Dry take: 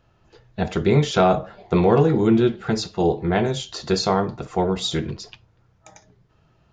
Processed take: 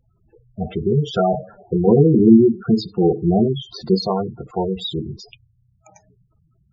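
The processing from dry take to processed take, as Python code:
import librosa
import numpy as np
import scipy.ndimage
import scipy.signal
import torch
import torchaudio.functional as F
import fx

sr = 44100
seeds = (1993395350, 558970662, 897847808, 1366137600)

y = fx.spec_gate(x, sr, threshold_db=-10, keep='strong')
y = fx.peak_eq(y, sr, hz=230.0, db=9.0, octaves=1.4, at=(1.87, 4.06))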